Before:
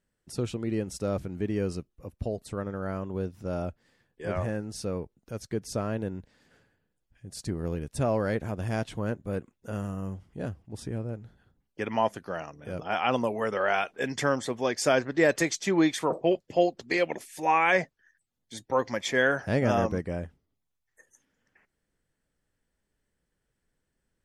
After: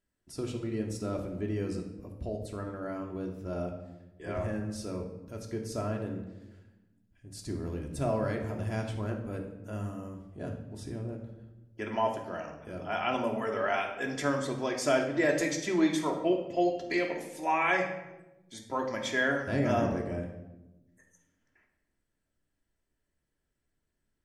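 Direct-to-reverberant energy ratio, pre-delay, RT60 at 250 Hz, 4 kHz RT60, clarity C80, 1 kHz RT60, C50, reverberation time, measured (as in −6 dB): 1.0 dB, 3 ms, 1.5 s, 0.70 s, 9.5 dB, 0.90 s, 6.5 dB, 1.0 s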